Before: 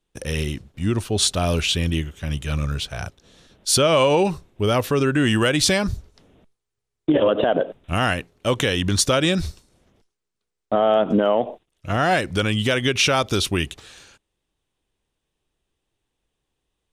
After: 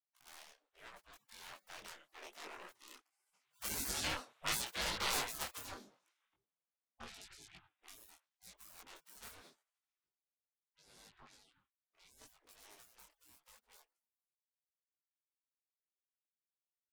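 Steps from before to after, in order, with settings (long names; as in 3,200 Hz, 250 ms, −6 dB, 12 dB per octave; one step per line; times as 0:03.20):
phase distortion by the signal itself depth 0.97 ms
source passing by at 0:04.47, 13 m/s, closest 5 metres
gate on every frequency bin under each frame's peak −25 dB weak
high-shelf EQ 2,300 Hz −10 dB
micro pitch shift up and down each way 28 cents
level +10 dB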